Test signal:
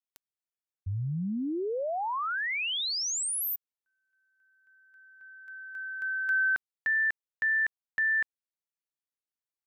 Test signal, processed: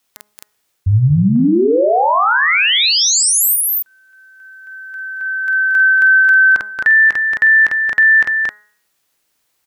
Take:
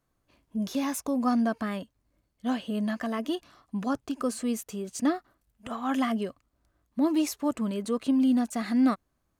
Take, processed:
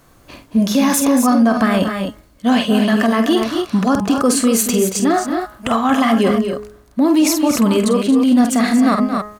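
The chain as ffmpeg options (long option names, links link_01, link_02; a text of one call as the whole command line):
ffmpeg -i in.wav -af "bandreject=frequency=209.6:width_type=h:width=4,bandreject=frequency=419.2:width_type=h:width=4,bandreject=frequency=628.8:width_type=h:width=4,bandreject=frequency=838.4:width_type=h:width=4,bandreject=frequency=1048:width_type=h:width=4,bandreject=frequency=1257.6:width_type=h:width=4,bandreject=frequency=1467.2:width_type=h:width=4,bandreject=frequency=1676.8:width_type=h:width=4,bandreject=frequency=1886.4:width_type=h:width=4,bandreject=frequency=2096:width_type=h:width=4,areverse,acompressor=threshold=-35dB:ratio=6:attack=0.94:release=590:knee=6:detection=peak,areverse,lowshelf=frequency=190:gain=-3,aecho=1:1:48|228|264:0.376|0.299|0.335,alimiter=level_in=32.5dB:limit=-1dB:release=50:level=0:latency=1,volume=-5dB" out.wav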